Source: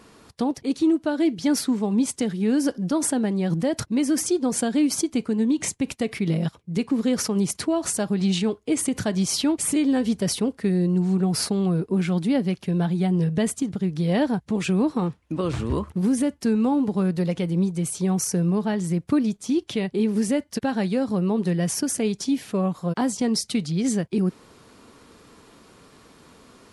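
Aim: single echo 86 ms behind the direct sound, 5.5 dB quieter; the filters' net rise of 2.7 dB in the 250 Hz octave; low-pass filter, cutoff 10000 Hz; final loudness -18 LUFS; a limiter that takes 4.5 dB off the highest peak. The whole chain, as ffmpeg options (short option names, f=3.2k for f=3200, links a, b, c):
-af "lowpass=10k,equalizer=f=250:t=o:g=3.5,alimiter=limit=-14dB:level=0:latency=1,aecho=1:1:86:0.531,volume=4dB"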